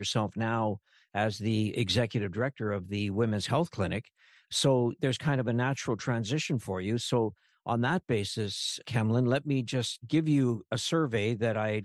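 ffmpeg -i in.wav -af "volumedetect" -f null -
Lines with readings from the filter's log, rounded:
mean_volume: -29.7 dB
max_volume: -15.5 dB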